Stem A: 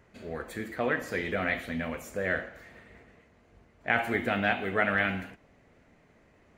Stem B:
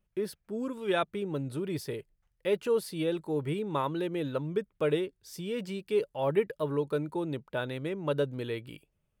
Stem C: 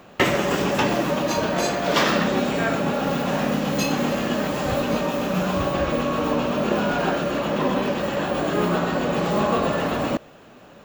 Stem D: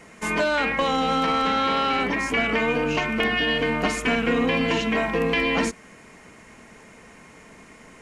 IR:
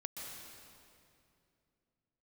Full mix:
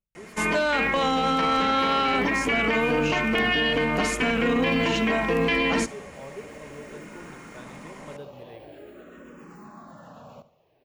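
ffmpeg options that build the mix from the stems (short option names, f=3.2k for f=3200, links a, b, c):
-filter_complex "[1:a]volume=-13.5dB,asplit=2[a][b];[b]volume=-11dB[c];[2:a]equalizer=f=3.5k:w=1.3:g=-5.5,acompressor=threshold=-25dB:ratio=3,asplit=2[d][e];[e]afreqshift=-0.46[f];[d][f]amix=inputs=2:normalize=1,adelay=250,volume=-15.5dB,asplit=2[g][h];[h]volume=-15.5dB[i];[3:a]adelay=150,volume=1.5dB,asplit=2[j][k];[k]volume=-21dB[l];[c][i][l]amix=inputs=3:normalize=0,aecho=0:1:71|142|213|284|355:1|0.35|0.122|0.0429|0.015[m];[a][g][j][m]amix=inputs=4:normalize=0,alimiter=limit=-14.5dB:level=0:latency=1:release=20"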